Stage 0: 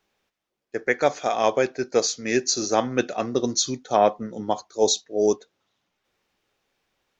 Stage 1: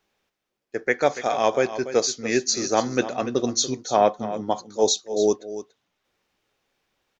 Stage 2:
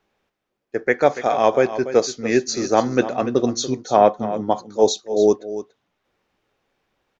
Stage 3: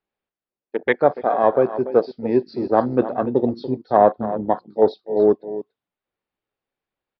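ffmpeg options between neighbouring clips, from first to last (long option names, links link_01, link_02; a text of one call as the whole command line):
ffmpeg -i in.wav -af "aecho=1:1:287:0.224" out.wav
ffmpeg -i in.wav -af "highshelf=frequency=2900:gain=-10.5,volume=5dB" out.wav
ffmpeg -i in.wav -af "afwtdn=0.0708,aresample=11025,aresample=44100" out.wav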